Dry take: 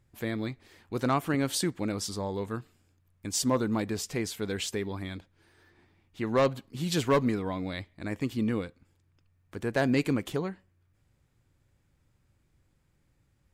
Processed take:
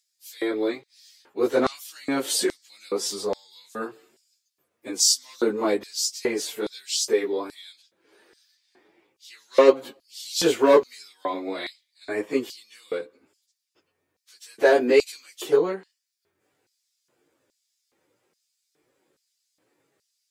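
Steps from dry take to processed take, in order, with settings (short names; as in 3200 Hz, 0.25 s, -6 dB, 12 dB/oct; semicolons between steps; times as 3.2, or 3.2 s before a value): plain phase-vocoder stretch 1.5×; LFO high-pass square 1.2 Hz 410–4900 Hz; gain +8 dB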